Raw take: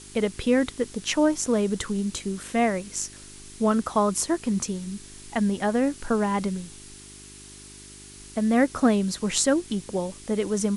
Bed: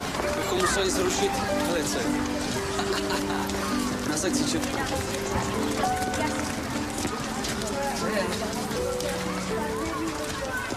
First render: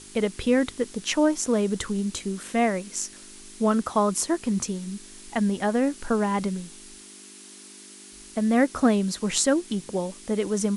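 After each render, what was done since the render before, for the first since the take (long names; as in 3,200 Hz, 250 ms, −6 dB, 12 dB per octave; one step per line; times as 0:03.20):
hum removal 50 Hz, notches 3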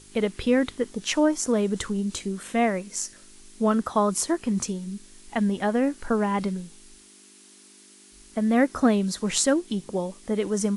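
noise reduction from a noise print 6 dB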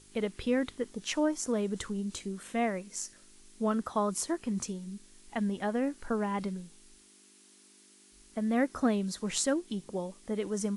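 level −7.5 dB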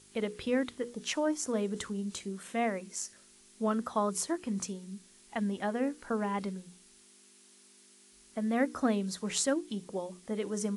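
high-pass filter 110 Hz 6 dB per octave
mains-hum notches 60/120/180/240/300/360/420/480 Hz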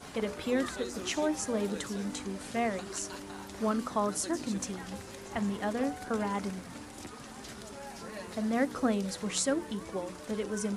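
mix in bed −16 dB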